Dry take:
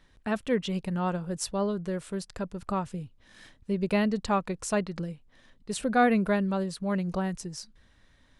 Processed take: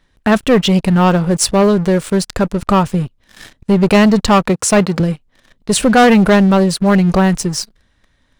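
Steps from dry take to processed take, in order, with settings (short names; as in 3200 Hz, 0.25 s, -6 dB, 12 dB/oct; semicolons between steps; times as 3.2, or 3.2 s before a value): 4.49–5 HPF 88 Hz 24 dB/oct; sample leveller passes 3; gain +8.5 dB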